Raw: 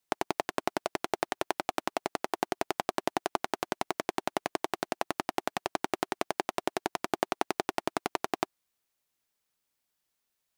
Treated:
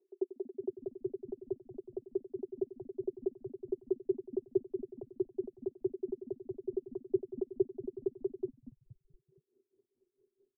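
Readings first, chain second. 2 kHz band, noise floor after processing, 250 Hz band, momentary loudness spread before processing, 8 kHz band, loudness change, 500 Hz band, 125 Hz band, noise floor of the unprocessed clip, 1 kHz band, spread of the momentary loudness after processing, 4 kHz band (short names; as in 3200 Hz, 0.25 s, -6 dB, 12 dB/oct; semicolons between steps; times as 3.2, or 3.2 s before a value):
under -40 dB, -84 dBFS, -2.0 dB, 2 LU, under -35 dB, -5.5 dB, -1.0 dB, -5.0 dB, -82 dBFS, under -35 dB, 7 LU, under -40 dB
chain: formant sharpening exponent 2; upward compressor, threshold -34 dBFS; Butterworth band-pass 380 Hz, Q 7.7; frequency-shifting echo 0.236 s, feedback 51%, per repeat -130 Hz, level -18 dB; dB-linear tremolo 4.6 Hz, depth 20 dB; gain +12 dB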